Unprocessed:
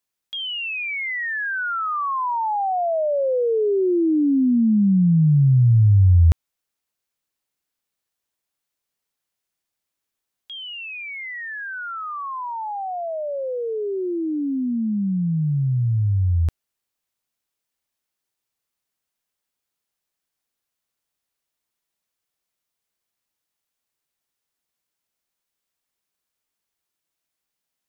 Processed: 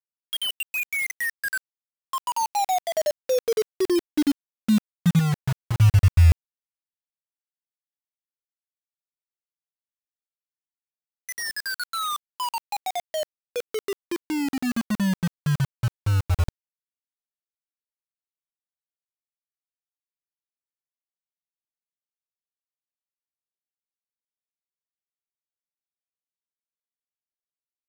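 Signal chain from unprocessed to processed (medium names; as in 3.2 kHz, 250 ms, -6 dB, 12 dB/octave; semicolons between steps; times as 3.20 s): random holes in the spectrogram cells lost 61%; 5.19–5.77 s: compressor with a negative ratio -22 dBFS, ratio -1; bit crusher 5-bit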